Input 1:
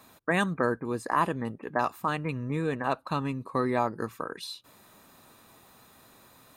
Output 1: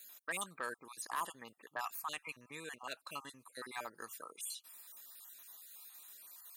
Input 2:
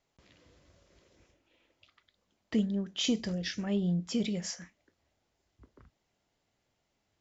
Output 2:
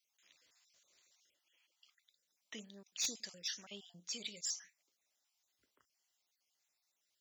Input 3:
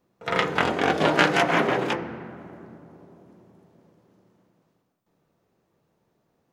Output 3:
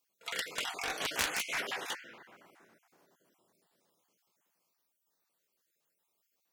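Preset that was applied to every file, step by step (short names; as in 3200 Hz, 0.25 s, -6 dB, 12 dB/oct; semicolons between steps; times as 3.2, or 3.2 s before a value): random spectral dropouts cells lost 34%; differentiator; added harmonics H 7 -7 dB, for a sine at -16 dBFS; gain -1.5 dB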